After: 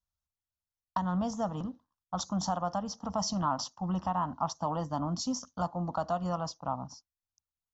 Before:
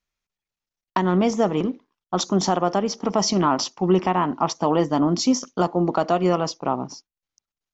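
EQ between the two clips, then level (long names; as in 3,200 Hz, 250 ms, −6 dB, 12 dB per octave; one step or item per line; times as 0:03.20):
parametric band 76 Hz +15 dB 0.94 octaves
phaser with its sweep stopped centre 940 Hz, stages 4
−8.5 dB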